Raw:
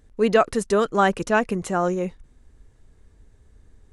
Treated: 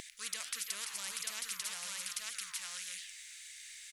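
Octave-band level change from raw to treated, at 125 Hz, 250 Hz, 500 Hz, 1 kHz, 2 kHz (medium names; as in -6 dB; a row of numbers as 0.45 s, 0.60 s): under -35 dB, -39.0 dB, -40.0 dB, -28.5 dB, -15.5 dB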